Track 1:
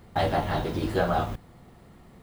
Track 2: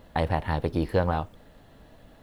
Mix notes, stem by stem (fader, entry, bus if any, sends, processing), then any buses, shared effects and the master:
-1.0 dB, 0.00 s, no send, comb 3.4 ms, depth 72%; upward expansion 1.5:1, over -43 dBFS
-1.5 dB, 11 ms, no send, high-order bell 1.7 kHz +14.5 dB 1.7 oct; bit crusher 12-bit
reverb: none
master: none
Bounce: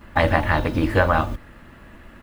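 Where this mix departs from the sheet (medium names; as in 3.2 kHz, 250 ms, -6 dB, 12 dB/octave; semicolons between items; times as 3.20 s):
stem 1: missing upward expansion 1.5:1, over -43 dBFS; master: extra bass shelf 350 Hz +5.5 dB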